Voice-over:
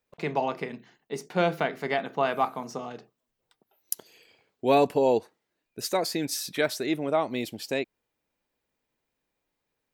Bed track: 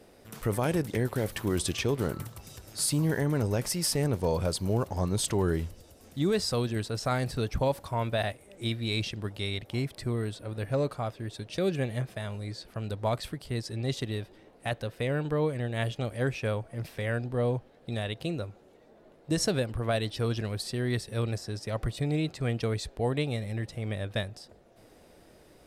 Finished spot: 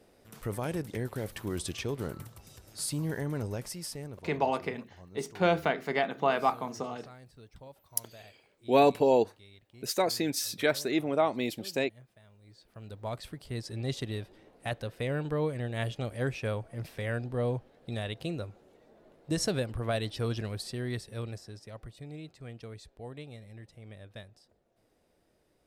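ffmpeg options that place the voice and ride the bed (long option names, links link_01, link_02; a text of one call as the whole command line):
ffmpeg -i stem1.wav -i stem2.wav -filter_complex "[0:a]adelay=4050,volume=-1dB[link_01];[1:a]volume=14.5dB,afade=type=out:start_time=3.37:duration=0.96:silence=0.141254,afade=type=in:start_time=12.41:duration=1.4:silence=0.0944061,afade=type=out:start_time=20.37:duration=1.48:silence=0.237137[link_02];[link_01][link_02]amix=inputs=2:normalize=0" out.wav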